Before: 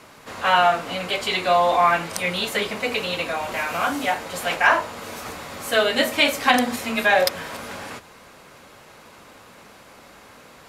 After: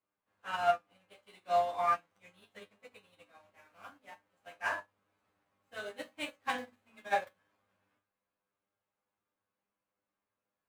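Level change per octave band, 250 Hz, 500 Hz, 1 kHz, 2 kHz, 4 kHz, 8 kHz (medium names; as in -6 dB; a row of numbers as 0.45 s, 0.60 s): -24.5 dB, -15.5 dB, -14.5 dB, -19.5 dB, -24.5 dB, -24.5 dB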